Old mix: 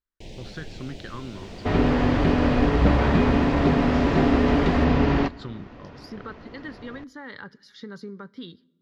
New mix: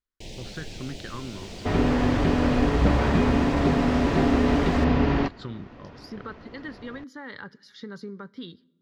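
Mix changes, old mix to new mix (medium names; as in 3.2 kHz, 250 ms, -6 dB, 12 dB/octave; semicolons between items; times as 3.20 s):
first sound: add treble shelf 3.7 kHz +9.5 dB; second sound: send off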